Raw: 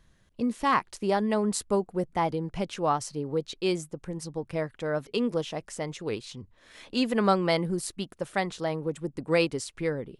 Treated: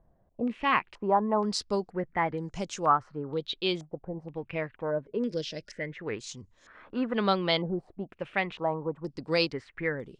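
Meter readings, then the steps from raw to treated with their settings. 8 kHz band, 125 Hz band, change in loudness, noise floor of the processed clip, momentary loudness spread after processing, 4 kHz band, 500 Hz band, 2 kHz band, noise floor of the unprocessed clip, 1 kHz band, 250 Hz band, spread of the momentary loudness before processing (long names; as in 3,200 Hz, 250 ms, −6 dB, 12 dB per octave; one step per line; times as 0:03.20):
−7.0 dB, −3.5 dB, −1.5 dB, −66 dBFS, 12 LU, +2.0 dB, −2.5 dB, +1.0 dB, −63 dBFS, +0.5 dB, −3.0 dB, 11 LU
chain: gain on a spectral selection 0:04.91–0:05.96, 640–1,400 Hz −15 dB
low-pass on a step sequencer 2.1 Hz 720–6,800 Hz
level −3.5 dB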